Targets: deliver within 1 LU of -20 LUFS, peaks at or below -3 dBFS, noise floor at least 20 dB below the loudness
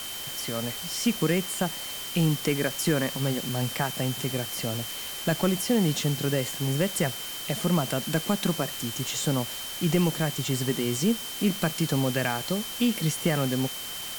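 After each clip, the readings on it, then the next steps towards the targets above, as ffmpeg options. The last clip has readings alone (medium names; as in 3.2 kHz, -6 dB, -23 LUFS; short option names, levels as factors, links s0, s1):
steady tone 3.1 kHz; tone level -38 dBFS; noise floor -36 dBFS; noise floor target -47 dBFS; loudness -27.0 LUFS; peak level -9.5 dBFS; loudness target -20.0 LUFS
-> -af "bandreject=f=3100:w=30"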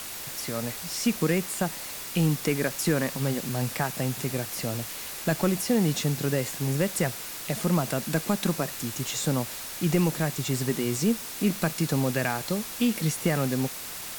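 steady tone not found; noise floor -38 dBFS; noise floor target -48 dBFS
-> -af "afftdn=nr=10:nf=-38"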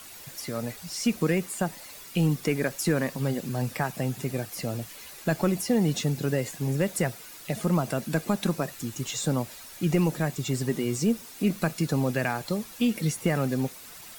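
noise floor -45 dBFS; noise floor target -48 dBFS
-> -af "afftdn=nr=6:nf=-45"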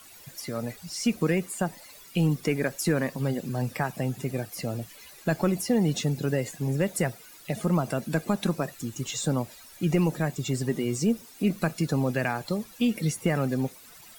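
noise floor -50 dBFS; loudness -28.5 LUFS; peak level -10.5 dBFS; loudness target -20.0 LUFS
-> -af "volume=2.66,alimiter=limit=0.708:level=0:latency=1"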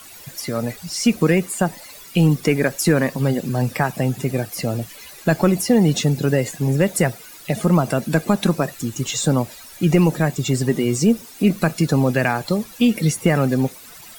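loudness -20.0 LUFS; peak level -3.0 dBFS; noise floor -41 dBFS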